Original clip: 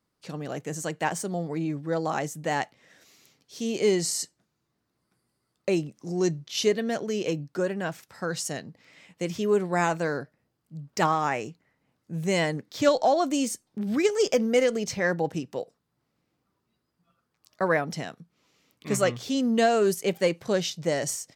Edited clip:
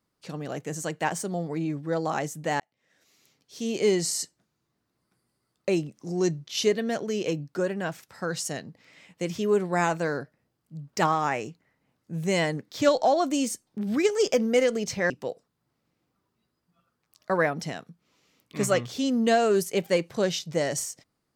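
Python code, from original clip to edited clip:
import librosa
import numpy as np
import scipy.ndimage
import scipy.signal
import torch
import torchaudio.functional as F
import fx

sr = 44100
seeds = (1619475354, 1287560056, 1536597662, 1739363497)

y = fx.edit(x, sr, fx.fade_in_span(start_s=2.6, length_s=1.12),
    fx.cut(start_s=15.1, length_s=0.31), tone=tone)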